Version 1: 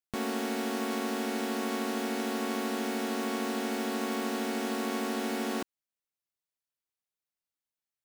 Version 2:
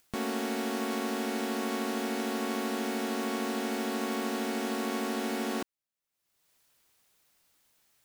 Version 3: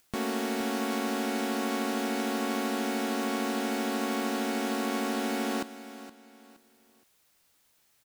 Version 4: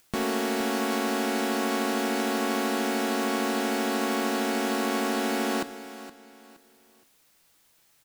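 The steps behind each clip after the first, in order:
upward compressor, threshold -50 dBFS
feedback delay 469 ms, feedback 32%, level -14.5 dB; trim +1.5 dB
simulated room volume 3700 m³, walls furnished, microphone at 0.68 m; trim +4 dB

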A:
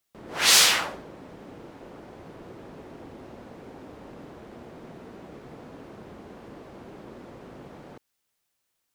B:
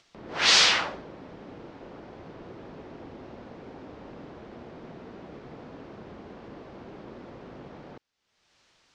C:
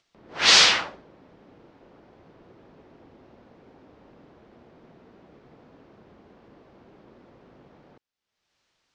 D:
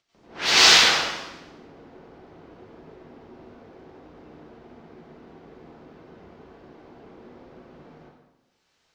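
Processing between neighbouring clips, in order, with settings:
low-pass 5.7 kHz 24 dB/octave; upward compressor, threshold -49 dBFS
upward expansion 1.5:1, over -43 dBFS; trim +4 dB
in parallel at -6 dB: saturation -20.5 dBFS, distortion -6 dB; on the sum: plate-style reverb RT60 1.1 s, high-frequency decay 0.85×, pre-delay 80 ms, DRR -9.5 dB; trim -8.5 dB

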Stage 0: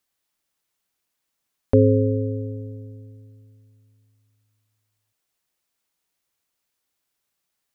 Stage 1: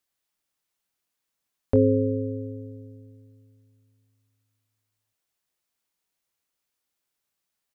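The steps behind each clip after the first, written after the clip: doubling 23 ms -11 dB; trim -4 dB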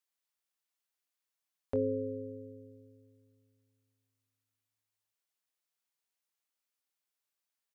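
bass shelf 320 Hz -11.5 dB; trim -7 dB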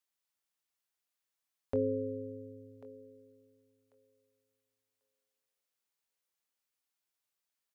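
thinning echo 1092 ms, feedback 24%, high-pass 850 Hz, level -13.5 dB

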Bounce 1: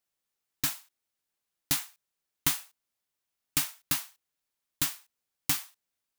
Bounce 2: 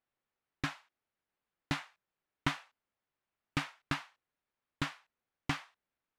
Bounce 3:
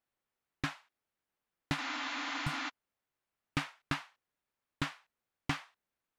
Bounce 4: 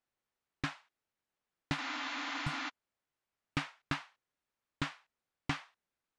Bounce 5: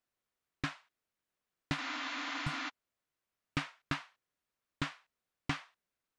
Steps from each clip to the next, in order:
low-pass 2.1 kHz 12 dB/octave; trim +2.5 dB
spectral replace 1.80–2.66 s, 230–7400 Hz before
low-pass 8.2 kHz 12 dB/octave; trim -1 dB
band-stop 840 Hz, Q 12

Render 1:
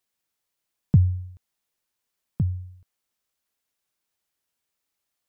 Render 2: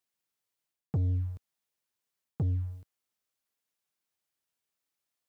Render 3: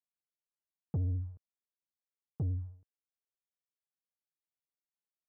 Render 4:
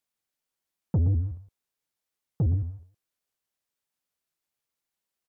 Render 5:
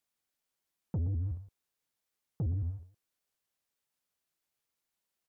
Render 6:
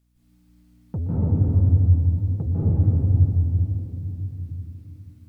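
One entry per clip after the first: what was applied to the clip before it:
reverse; compression 6:1, threshold -27 dBFS, peak gain reduction 14.5 dB; reverse; high-pass 66 Hz 12 dB/octave; waveshaping leveller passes 2; trim -1.5 dB
low-pass 1 kHz 12 dB/octave; vibrato 14 Hz 52 cents; upward expansion 1.5:1, over -47 dBFS; trim -3.5 dB
delay 118 ms -11 dB; vibrato with a chosen wave saw up 6.1 Hz, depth 250 cents; trim +9 dB
peak limiter -28.5 dBFS, peak gain reduction 11 dB
hum 60 Hz, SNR 31 dB; reverberation RT60 3.4 s, pre-delay 148 ms, DRR -11 dB; trim +5 dB

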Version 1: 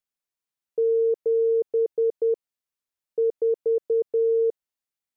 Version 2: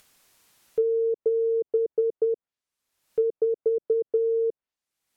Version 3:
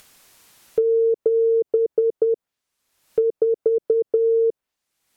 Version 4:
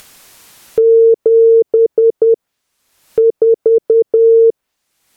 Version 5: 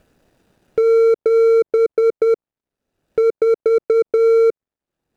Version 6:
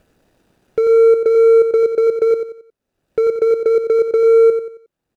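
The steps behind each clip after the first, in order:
upward compressor, threshold -40 dBFS; low-pass that closes with the level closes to 380 Hz, closed at -19.5 dBFS; trim +2 dB
compression, threshold -24 dBFS, peak gain reduction 5.5 dB; trim +8.5 dB
loudness maximiser +11.5 dB; trim -1 dB
median filter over 41 samples; trim -4 dB
feedback delay 90 ms, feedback 35%, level -8 dB

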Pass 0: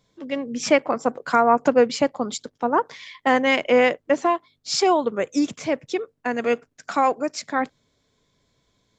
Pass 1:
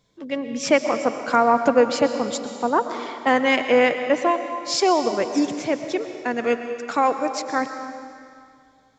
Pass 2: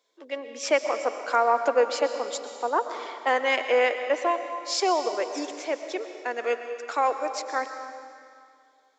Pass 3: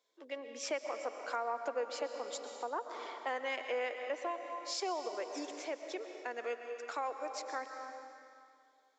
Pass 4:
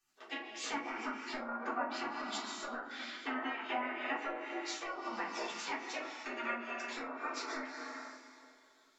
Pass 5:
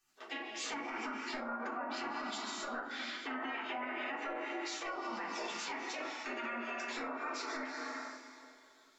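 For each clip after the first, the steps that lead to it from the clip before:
reverberation RT60 2.3 s, pre-delay 80 ms, DRR 7.5 dB
high-pass 380 Hz 24 dB/octave; trim -4 dB
compression 2:1, threshold -32 dBFS, peak gain reduction 9 dB; trim -7 dB
low-pass that closes with the level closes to 1.2 kHz, closed at -32.5 dBFS; spectral gate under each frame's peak -15 dB weak; simulated room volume 190 m³, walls furnished, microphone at 3.6 m; trim +4 dB
peak limiter -34 dBFS, peak gain reduction 11 dB; trim +3 dB

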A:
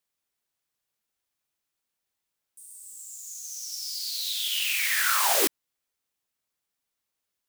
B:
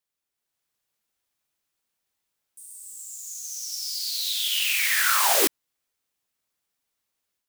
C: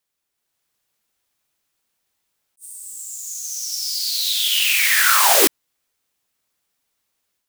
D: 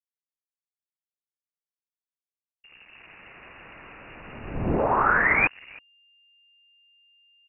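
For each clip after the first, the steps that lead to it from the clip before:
level rider gain up to 6 dB; trim -3 dB
attacks held to a fixed rise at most 460 dB/s; trim +6.5 dB
delay 318 ms -23 dB; hysteresis with a dead band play -24 dBFS; frequency inversion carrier 2.8 kHz; trim -2.5 dB

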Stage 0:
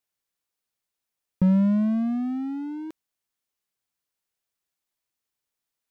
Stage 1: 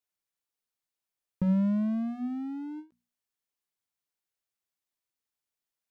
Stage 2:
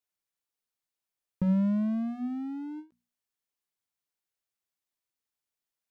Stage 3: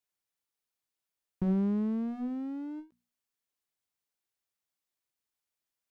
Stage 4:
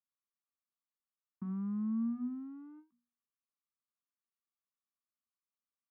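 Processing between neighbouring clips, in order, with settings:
hum notches 60/120/180/240 Hz; endings held to a fixed fall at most 250 dB/s; trim -5.5 dB
no audible change
single-diode clipper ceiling -29.5 dBFS
two resonant band-passes 520 Hz, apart 2.3 oct

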